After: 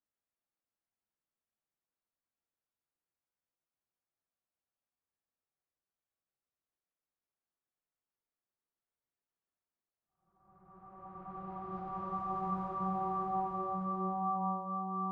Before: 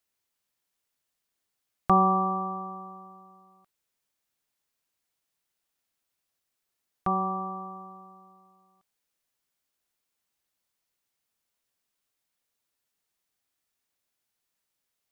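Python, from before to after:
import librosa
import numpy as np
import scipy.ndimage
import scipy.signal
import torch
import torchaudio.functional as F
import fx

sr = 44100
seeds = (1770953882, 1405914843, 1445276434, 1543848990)

y = fx.paulstretch(x, sr, seeds[0], factor=10.0, window_s=0.5, from_s=5.81)
y = fx.env_lowpass(y, sr, base_hz=1400.0, full_db=-24.0)
y = y * 10.0 ** (-8.0 / 20.0)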